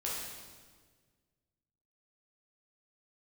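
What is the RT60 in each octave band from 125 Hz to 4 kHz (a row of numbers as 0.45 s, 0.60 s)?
2.2 s, 1.9 s, 1.7 s, 1.4 s, 1.4 s, 1.3 s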